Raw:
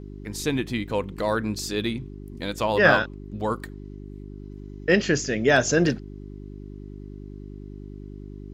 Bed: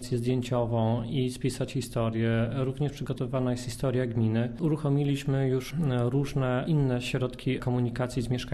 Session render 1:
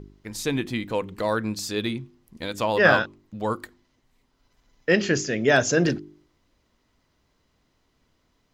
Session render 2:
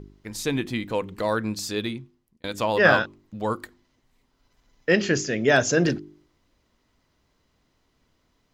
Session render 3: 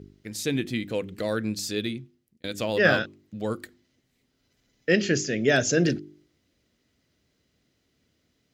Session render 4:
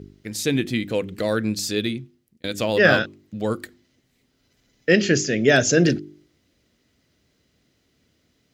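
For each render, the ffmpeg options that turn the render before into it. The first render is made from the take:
-af "bandreject=f=50:t=h:w=4,bandreject=f=100:t=h:w=4,bandreject=f=150:t=h:w=4,bandreject=f=200:t=h:w=4,bandreject=f=250:t=h:w=4,bandreject=f=300:t=h:w=4,bandreject=f=350:t=h:w=4,bandreject=f=400:t=h:w=4"
-filter_complex "[0:a]asplit=2[s0][s1];[s0]atrim=end=2.44,asetpts=PTS-STARTPTS,afade=t=out:st=1.73:d=0.71[s2];[s1]atrim=start=2.44,asetpts=PTS-STARTPTS,afade=t=in:d=0.004:c=hsin[s3];[s2][s3]concat=n=2:v=0:a=1"
-af "highpass=78,equalizer=f=980:w=1.9:g=-14"
-af "volume=1.78,alimiter=limit=0.708:level=0:latency=1"

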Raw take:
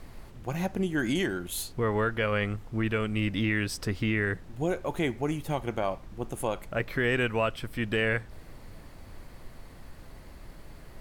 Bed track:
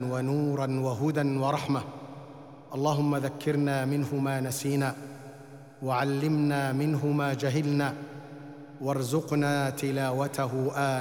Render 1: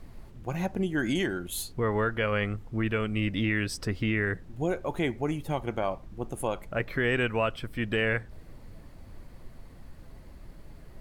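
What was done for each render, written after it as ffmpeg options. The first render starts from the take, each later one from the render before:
-af "afftdn=nr=6:nf=-48"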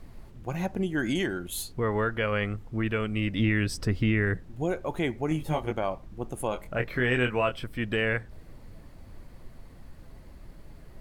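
-filter_complex "[0:a]asettb=1/sr,asplit=3[s0][s1][s2];[s0]atrim=end=3.394[s3];[s1]atrim=start=3.39:end=4.4,asetpts=PTS-STARTPTS,afade=t=in:d=0.004:c=qsin,afade=t=out:st=1.006:d=0.004:c=qsin,lowshelf=f=250:g=6[s4];[s2]atrim=start=4.396[s5];[s3][s4]acrossfade=d=0.004:c1=hsin:c2=qsin[s6];[s6][s5]acrossfade=d=0.004:c1=qsin:c2=hsin,asettb=1/sr,asplit=3[s7][s8][s9];[s7]atrim=end=5.294[s10];[s8]atrim=start=5.29:end=5.73,asetpts=PTS-STARTPTS,afade=t=in:d=0.004:c=qsin,afade=t=out:st=0.436:d=0.004:c=qsin,asplit=2[s11][s12];[s12]adelay=19,volume=0.75[s13];[s11][s13]amix=inputs=2:normalize=0,atrim=end_sample=19404[s14];[s9]atrim=start=5.726[s15];[s10][s14]acrossfade=d=0.004:c1=hsin:c2=qsin[s16];[s16][s15]acrossfade=d=0.004:c1=qsin:c2=hsin,asettb=1/sr,asplit=3[s17][s18][s19];[s17]atrim=end=6.494[s20];[s18]atrim=start=6.49:end=7.64,asetpts=PTS-STARTPTS,afade=t=in:d=0.004:c=qsin,afade=t=out:st=1.146:d=0.004:c=qsin,asplit=2[s21][s22];[s22]adelay=24,volume=0.473[s23];[s21][s23]amix=inputs=2:normalize=0,atrim=end_sample=50715[s24];[s19]atrim=start=7.636[s25];[s20][s24]acrossfade=d=0.004:c1=hsin:c2=qsin[s26];[s26][s25]acrossfade=d=0.004:c1=qsin:c2=hsin"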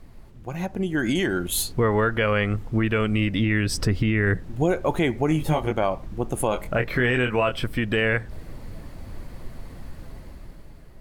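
-af "alimiter=limit=0.0891:level=0:latency=1:release=145,dynaudnorm=f=210:g=9:m=2.99"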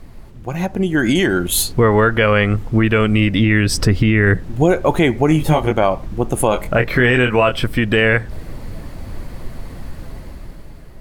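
-af "volume=2.51"

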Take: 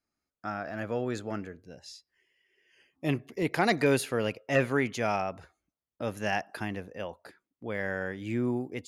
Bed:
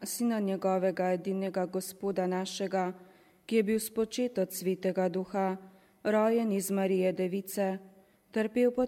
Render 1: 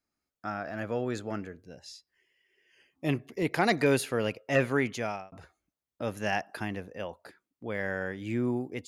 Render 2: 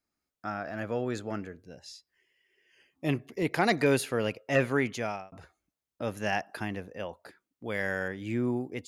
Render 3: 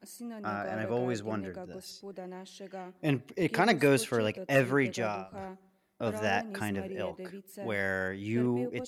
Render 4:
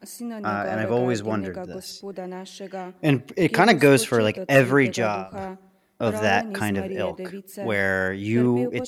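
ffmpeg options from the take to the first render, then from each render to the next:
-filter_complex "[0:a]asplit=2[s0][s1];[s0]atrim=end=5.32,asetpts=PTS-STARTPTS,afade=t=out:st=4.91:d=0.41[s2];[s1]atrim=start=5.32,asetpts=PTS-STARTPTS,afade=t=in:d=0.004:c=hsin[s3];[s2][s3]concat=n=2:v=0:a=1"
-filter_complex "[0:a]asettb=1/sr,asplit=3[s0][s1][s2];[s0]atrim=end=7.654[s3];[s1]atrim=start=7.65:end=8.08,asetpts=PTS-STARTPTS,afade=t=in:d=0.004:c=qsin,afade=t=out:st=0.426:d=0.004:c=qsin,highshelf=f=3300:g=11.5[s4];[s2]atrim=start=8.076[s5];[s3][s4]acrossfade=d=0.004:c1=hsin:c2=qsin[s6];[s6][s5]acrossfade=d=0.004:c1=qsin:c2=hsin"
-filter_complex "[1:a]volume=0.251[s0];[0:a][s0]amix=inputs=2:normalize=0"
-af "volume=2.82"

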